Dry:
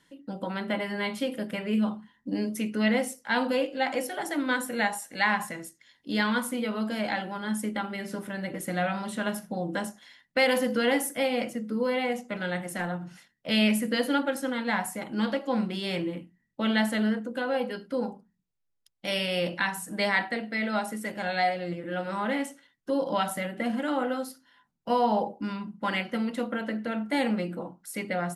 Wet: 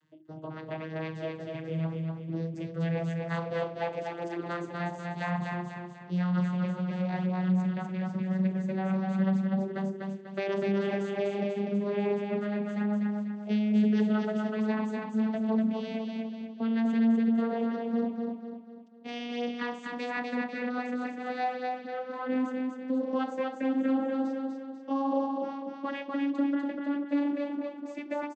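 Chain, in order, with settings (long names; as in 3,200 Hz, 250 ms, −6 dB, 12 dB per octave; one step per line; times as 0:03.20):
vocoder with a gliding carrier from D#3, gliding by +11 semitones
brickwall limiter −22.5 dBFS, peak gain reduction 9.5 dB
repeating echo 246 ms, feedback 44%, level −3.5 dB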